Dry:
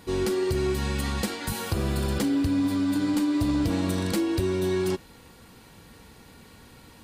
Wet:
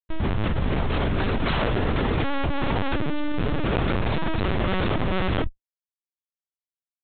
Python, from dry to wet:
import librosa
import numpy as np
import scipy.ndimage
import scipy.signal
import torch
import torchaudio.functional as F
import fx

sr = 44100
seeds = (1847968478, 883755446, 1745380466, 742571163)

p1 = fx.tape_start_head(x, sr, length_s=1.35)
p2 = fx.dereverb_blind(p1, sr, rt60_s=1.6)
p3 = scipy.signal.sosfilt(scipy.signal.butter(2, 48.0, 'highpass', fs=sr, output='sos'), p2)
p4 = fx.high_shelf(p3, sr, hz=3100.0, db=8.5)
p5 = fx.notch(p4, sr, hz=1100.0, q=6.5)
p6 = fx.schmitt(p5, sr, flips_db=-29.5)
p7 = fx.doubler(p6, sr, ms=20.0, db=-6.5)
p8 = p7 + fx.echo_single(p7, sr, ms=468, db=-16.0, dry=0)
p9 = fx.lpc_vocoder(p8, sr, seeds[0], excitation='pitch_kept', order=10)
p10 = fx.env_flatten(p9, sr, amount_pct=100)
y = p10 * librosa.db_to_amplitude(4.5)